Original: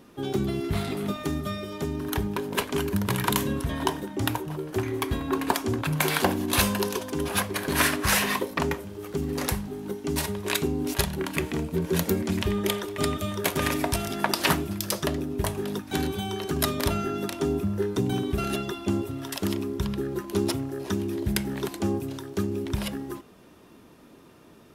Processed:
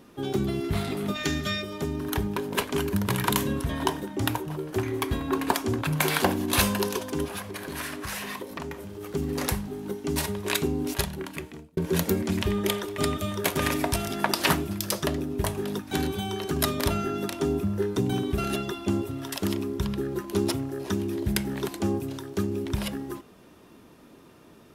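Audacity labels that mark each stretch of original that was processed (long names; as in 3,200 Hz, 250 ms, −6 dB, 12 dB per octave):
1.160000	1.620000	gain on a spectral selection 1,400–7,600 Hz +10 dB
7.250000	9.010000	downward compressor 3 to 1, threshold −34 dBFS
10.770000	11.770000	fade out linear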